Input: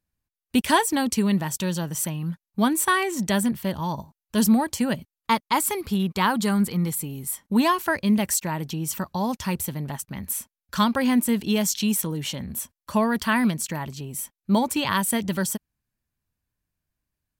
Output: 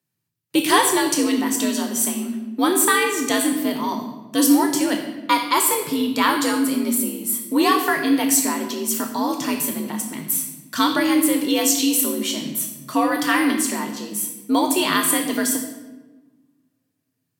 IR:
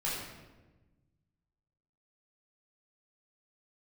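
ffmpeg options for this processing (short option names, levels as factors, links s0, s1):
-filter_complex "[0:a]highpass=45,afreqshift=66,asplit=2[s0][s1];[1:a]atrim=start_sample=2205,lowshelf=f=100:g=10,highshelf=f=2500:g=11.5[s2];[s1][s2]afir=irnorm=-1:irlink=0,volume=0.355[s3];[s0][s3]amix=inputs=2:normalize=0"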